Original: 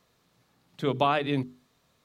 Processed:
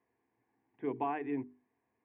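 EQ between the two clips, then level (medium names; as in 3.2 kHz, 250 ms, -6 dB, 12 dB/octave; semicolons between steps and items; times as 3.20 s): distance through air 81 m; cabinet simulation 110–2100 Hz, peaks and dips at 200 Hz +8 dB, 300 Hz +3 dB, 610 Hz +4 dB; static phaser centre 870 Hz, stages 8; -7.5 dB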